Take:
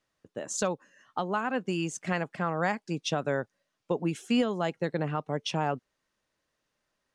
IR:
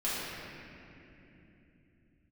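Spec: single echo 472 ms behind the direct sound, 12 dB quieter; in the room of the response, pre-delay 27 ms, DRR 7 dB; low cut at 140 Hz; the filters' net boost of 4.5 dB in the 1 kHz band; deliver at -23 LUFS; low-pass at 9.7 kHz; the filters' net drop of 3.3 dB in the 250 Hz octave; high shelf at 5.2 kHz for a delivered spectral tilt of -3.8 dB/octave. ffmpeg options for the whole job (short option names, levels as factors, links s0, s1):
-filter_complex "[0:a]highpass=140,lowpass=9700,equalizer=f=250:t=o:g=-4,equalizer=f=1000:t=o:g=6,highshelf=f=5200:g=6.5,aecho=1:1:472:0.251,asplit=2[s0][s1];[1:a]atrim=start_sample=2205,adelay=27[s2];[s1][s2]afir=irnorm=-1:irlink=0,volume=0.168[s3];[s0][s3]amix=inputs=2:normalize=0,volume=2.11"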